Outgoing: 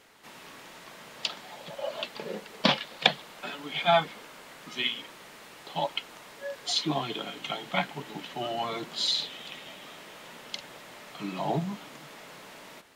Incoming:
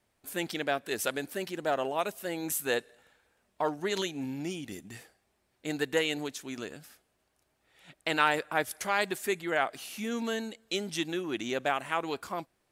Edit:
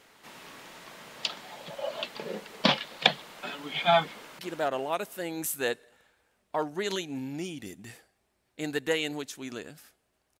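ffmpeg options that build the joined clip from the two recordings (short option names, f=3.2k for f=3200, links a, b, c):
-filter_complex "[0:a]apad=whole_dur=10.39,atrim=end=10.39,atrim=end=4.392[a];[1:a]atrim=start=1.448:end=7.45[b];[a][b]acrossfade=d=0.004:c1=hsin:c2=hsin,asplit=2[c][d];[d]afade=t=in:st=4.13:d=0.01,afade=t=out:st=4.39:d=0.01,aecho=0:1:290|580|870|1160|1450|1740|2030|2320:0.794328|0.436881|0.240284|0.132156|0.072686|0.0399773|0.0219875|0.0120931[e];[c][e]amix=inputs=2:normalize=0"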